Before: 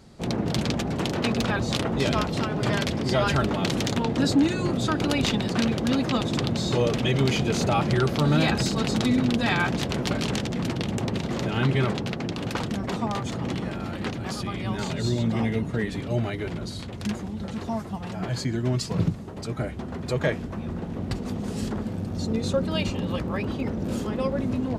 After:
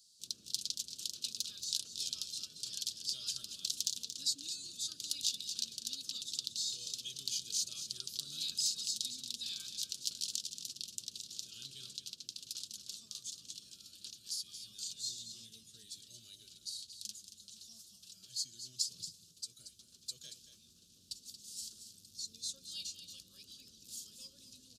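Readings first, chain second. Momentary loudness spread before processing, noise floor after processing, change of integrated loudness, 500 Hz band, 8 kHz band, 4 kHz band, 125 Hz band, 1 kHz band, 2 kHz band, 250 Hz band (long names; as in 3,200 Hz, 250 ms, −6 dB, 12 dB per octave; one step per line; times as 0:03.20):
9 LU, −64 dBFS, −13.5 dB, below −40 dB, +0.5 dB, −5.5 dB, −40.0 dB, below −40 dB, −31.5 dB, below −40 dB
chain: inverse Chebyshev high-pass filter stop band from 2,200 Hz, stop band 40 dB
single-tap delay 229 ms −10 dB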